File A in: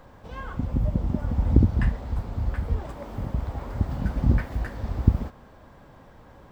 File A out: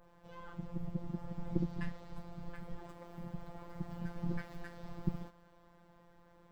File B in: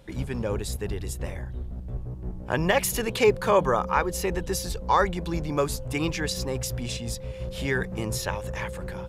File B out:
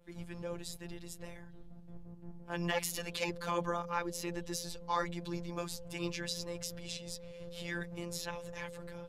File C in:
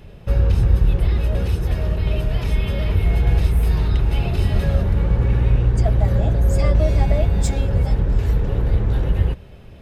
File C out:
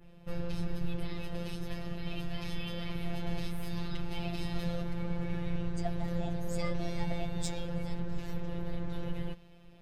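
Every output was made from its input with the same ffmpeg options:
ffmpeg -i in.wav -af "adynamicequalizer=threshold=0.00501:dfrequency=4400:dqfactor=0.87:tfrequency=4400:tqfactor=0.87:attack=5:release=100:ratio=0.375:range=3:mode=boostabove:tftype=bell,afftfilt=real='hypot(re,im)*cos(PI*b)':imag='0':win_size=1024:overlap=0.75,volume=-9dB" out.wav

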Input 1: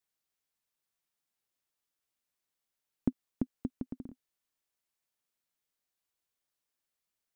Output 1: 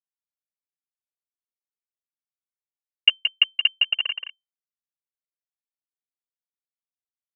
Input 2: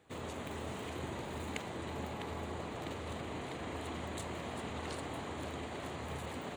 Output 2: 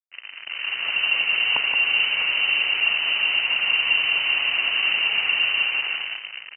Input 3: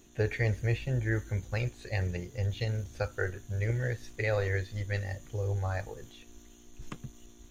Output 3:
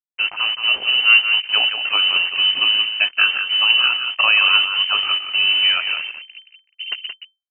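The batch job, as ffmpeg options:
ffmpeg -i in.wav -af "afftdn=noise_reduction=33:noise_floor=-46,equalizer=frequency=330:width=2.8:gain=15,dynaudnorm=framelen=150:gausssize=11:maxgain=10.5dB,aresample=8000,acrusher=bits=4:mix=0:aa=0.5,aresample=44100,asoftclip=type=tanh:threshold=-8dB,aecho=1:1:174:0.422,lowpass=frequency=2600:width_type=q:width=0.5098,lowpass=frequency=2600:width_type=q:width=0.6013,lowpass=frequency=2600:width_type=q:width=0.9,lowpass=frequency=2600:width_type=q:width=2.563,afreqshift=-3100,volume=3dB" out.wav

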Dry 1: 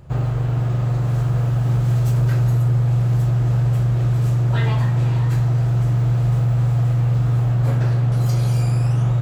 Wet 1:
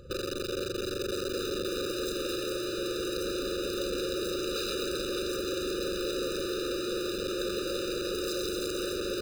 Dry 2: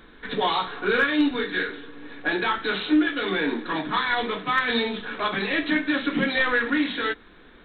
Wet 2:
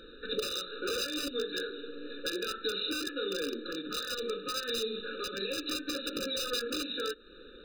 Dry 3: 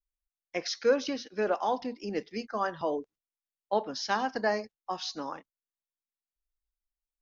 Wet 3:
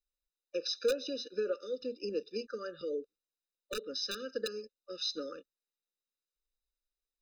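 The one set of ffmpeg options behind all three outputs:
ffmpeg -i in.wav -af "aeval=exprs='(mod(6.68*val(0)+1,2)-1)/6.68':channel_layout=same,acompressor=threshold=-35dB:ratio=3,equalizer=frequency=125:width_type=o:width=1:gain=-11,equalizer=frequency=500:width_type=o:width=1:gain=9,equalizer=frequency=1000:width_type=o:width=1:gain=3,equalizer=frequency=2000:width_type=o:width=1:gain=-6,equalizer=frequency=4000:width_type=o:width=1:gain=12,afftfilt=real='re*eq(mod(floor(b*sr/1024/590),2),0)':imag='im*eq(mod(floor(b*sr/1024/590),2),0)':win_size=1024:overlap=0.75,volume=-3dB" out.wav

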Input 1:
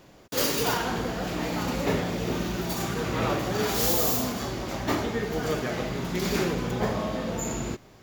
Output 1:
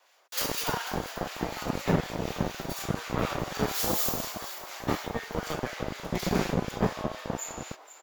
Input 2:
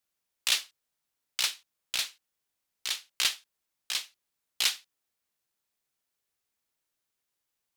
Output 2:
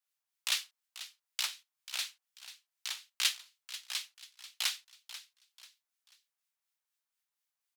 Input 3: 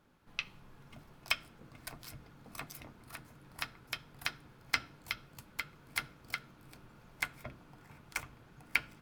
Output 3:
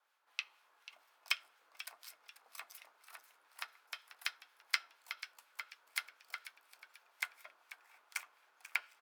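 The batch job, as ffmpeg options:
ffmpeg -i in.wav -filter_complex "[0:a]adynamicequalizer=threshold=0.00501:dfrequency=160:dqfactor=1.4:tfrequency=160:tqfactor=1.4:attack=5:release=100:ratio=0.375:range=3.5:mode=boostabove:tftype=bell,aeval=exprs='0.316*(cos(1*acos(clip(val(0)/0.316,-1,1)))-cos(1*PI/2))+0.0316*(cos(2*acos(clip(val(0)/0.316,-1,1)))-cos(2*PI/2))+0.0158*(cos(3*acos(clip(val(0)/0.316,-1,1)))-cos(3*PI/2))+0.00447*(cos(7*acos(clip(val(0)/0.316,-1,1)))-cos(7*PI/2))':channel_layout=same,acrossover=split=1400[link_01][link_02];[link_01]aeval=exprs='val(0)*(1-0.5/2+0.5/2*cos(2*PI*4.1*n/s))':channel_layout=same[link_03];[link_02]aeval=exprs='val(0)*(1-0.5/2-0.5/2*cos(2*PI*4.1*n/s))':channel_layout=same[link_04];[link_03][link_04]amix=inputs=2:normalize=0,asplit=4[link_05][link_06][link_07][link_08];[link_06]adelay=489,afreqshift=120,volume=-14dB[link_09];[link_07]adelay=978,afreqshift=240,volume=-23.4dB[link_10];[link_08]adelay=1467,afreqshift=360,volume=-32.7dB[link_11];[link_05][link_09][link_10][link_11]amix=inputs=4:normalize=0,acrossover=split=640|4100[link_12][link_13][link_14];[link_12]acrusher=bits=3:mix=0:aa=0.5[link_15];[link_15][link_13][link_14]amix=inputs=3:normalize=0" out.wav

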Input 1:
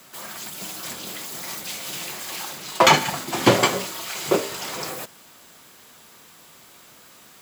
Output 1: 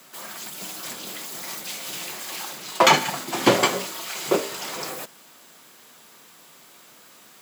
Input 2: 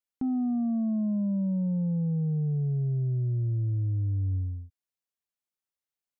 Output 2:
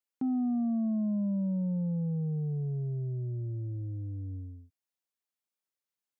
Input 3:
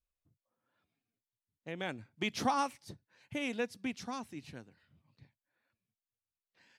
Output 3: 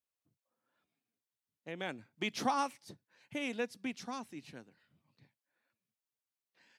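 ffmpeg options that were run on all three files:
ffmpeg -i in.wav -af "highpass=160,volume=-1dB" out.wav

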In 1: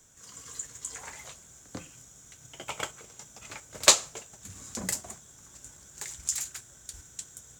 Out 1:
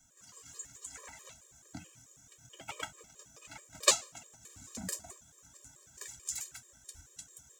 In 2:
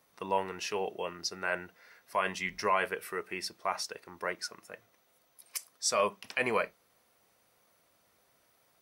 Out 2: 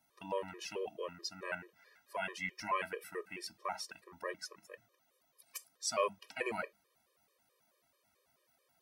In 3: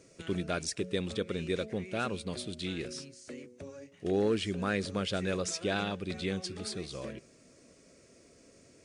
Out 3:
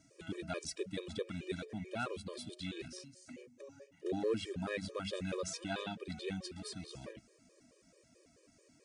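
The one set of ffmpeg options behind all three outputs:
ffmpeg -i in.wav -af "bandreject=frequency=50:width_type=h:width=6,bandreject=frequency=100:width_type=h:width=6,bandreject=frequency=150:width_type=h:width=6,bandreject=frequency=200:width_type=h:width=6,afftfilt=real='re*gt(sin(2*PI*4.6*pts/sr)*(1-2*mod(floor(b*sr/1024/320),2)),0)':imag='im*gt(sin(2*PI*4.6*pts/sr)*(1-2*mod(floor(b*sr/1024/320),2)),0)':win_size=1024:overlap=0.75,volume=-3.5dB" out.wav

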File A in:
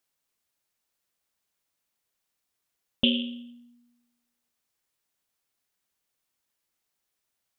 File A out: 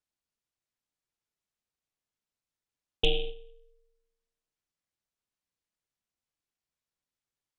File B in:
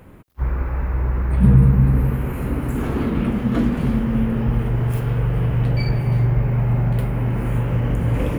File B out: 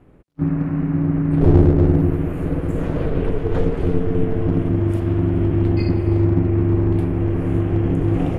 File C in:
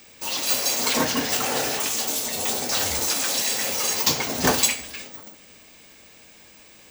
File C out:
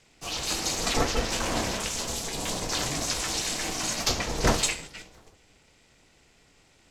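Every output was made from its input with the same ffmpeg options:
ffmpeg -i in.wav -af "agate=range=-6dB:threshold=-35dB:ratio=16:detection=peak,aeval=exprs='val(0)*sin(2*PI*220*n/s)':channel_layout=same,lowshelf=frequency=280:gain=8.5,aeval=exprs='clip(val(0),-1,0.355)':channel_layout=same,lowpass=8500,volume=-1.5dB" out.wav

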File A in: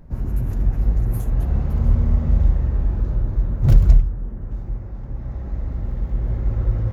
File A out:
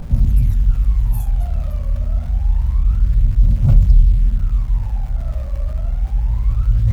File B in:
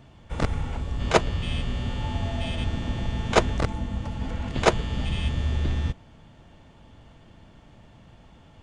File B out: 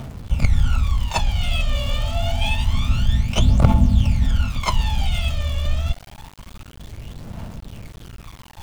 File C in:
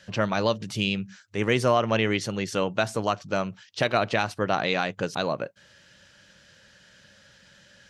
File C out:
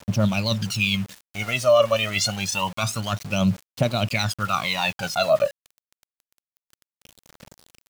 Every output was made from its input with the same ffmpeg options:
ffmpeg -i in.wav -af "areverse,acompressor=threshold=-28dB:ratio=5,areverse,aphaser=in_gain=1:out_gain=1:delay=1.8:decay=0.8:speed=0.27:type=triangular,superequalizer=6b=0.398:7b=0.355:11b=0.398,aeval=exprs='val(0)*gte(abs(val(0)),0.00794)':channel_layout=same,adynamicequalizer=threshold=0.00708:dfrequency=1600:dqfactor=0.7:tfrequency=1600:tqfactor=0.7:attack=5:release=100:ratio=0.375:range=2:mode=boostabove:tftype=highshelf,volume=5.5dB" out.wav

